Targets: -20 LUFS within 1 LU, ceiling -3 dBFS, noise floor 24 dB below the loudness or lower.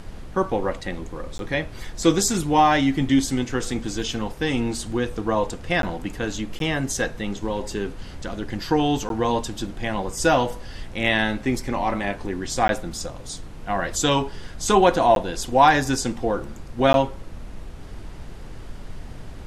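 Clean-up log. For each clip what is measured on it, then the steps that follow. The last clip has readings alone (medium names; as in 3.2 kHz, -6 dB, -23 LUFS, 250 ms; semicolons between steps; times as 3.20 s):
dropouts 7; longest dropout 12 ms; noise floor -38 dBFS; noise floor target -47 dBFS; loudness -23.0 LUFS; peak level -4.0 dBFS; loudness target -20.0 LUFS
-> interpolate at 1.38/5.82/6.59/9.09/12.68/15.15/16.93 s, 12 ms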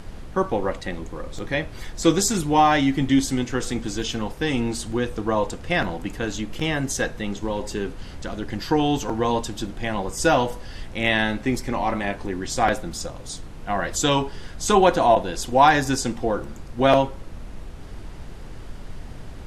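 dropouts 0; noise floor -38 dBFS; noise floor target -47 dBFS
-> noise print and reduce 9 dB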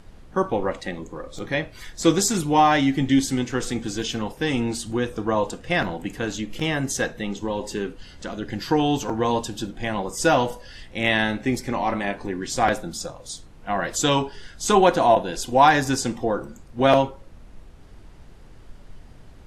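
noise floor -46 dBFS; noise floor target -47 dBFS
-> noise print and reduce 6 dB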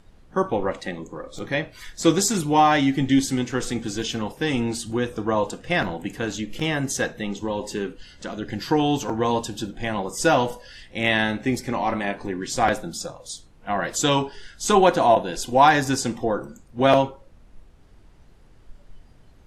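noise floor -51 dBFS; loudness -23.0 LUFS; peak level -4.0 dBFS; loudness target -20.0 LUFS
-> trim +3 dB; peak limiter -3 dBFS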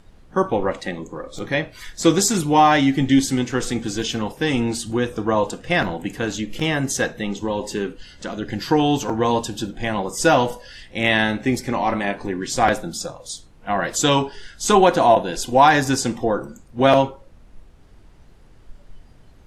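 loudness -20.5 LUFS; peak level -3.0 dBFS; noise floor -48 dBFS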